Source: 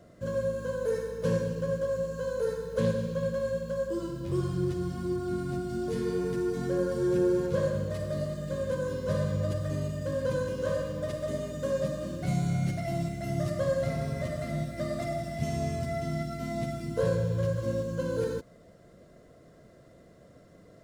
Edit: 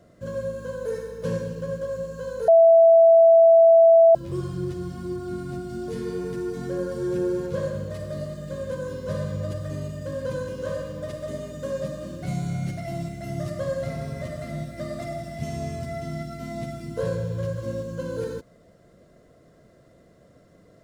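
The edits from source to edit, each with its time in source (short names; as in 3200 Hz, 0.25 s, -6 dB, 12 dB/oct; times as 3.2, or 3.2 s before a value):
2.48–4.15 bleep 662 Hz -10 dBFS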